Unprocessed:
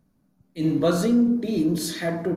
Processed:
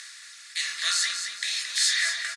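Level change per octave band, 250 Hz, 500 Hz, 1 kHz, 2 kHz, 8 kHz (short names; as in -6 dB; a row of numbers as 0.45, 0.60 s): under -40 dB, under -30 dB, -6.0 dB, +10.5 dB, +10.5 dB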